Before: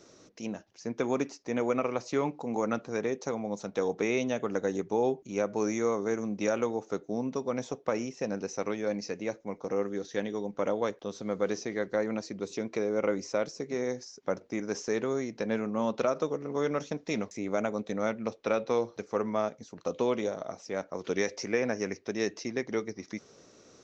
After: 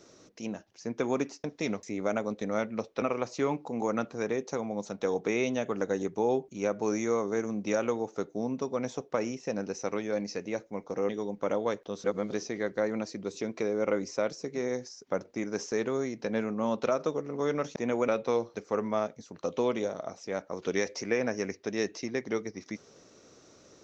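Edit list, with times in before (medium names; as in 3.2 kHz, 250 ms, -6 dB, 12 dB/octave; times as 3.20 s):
1.44–1.76 s: swap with 16.92–18.50 s
9.83–10.25 s: delete
11.20–11.48 s: reverse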